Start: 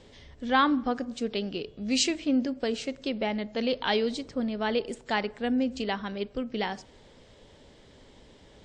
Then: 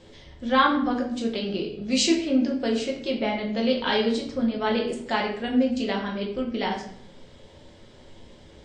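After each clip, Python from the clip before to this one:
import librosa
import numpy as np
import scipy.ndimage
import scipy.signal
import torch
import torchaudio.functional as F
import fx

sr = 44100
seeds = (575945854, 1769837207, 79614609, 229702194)

y = fx.room_shoebox(x, sr, seeds[0], volume_m3=110.0, walls='mixed', distance_m=0.93)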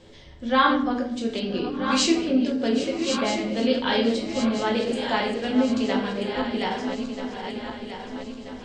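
y = fx.reverse_delay_fb(x, sr, ms=642, feedback_pct=70, wet_db=-7.5)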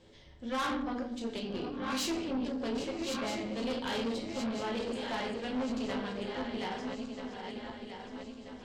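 y = fx.tube_stage(x, sr, drive_db=23.0, bias=0.55)
y = y * 10.0 ** (-6.5 / 20.0)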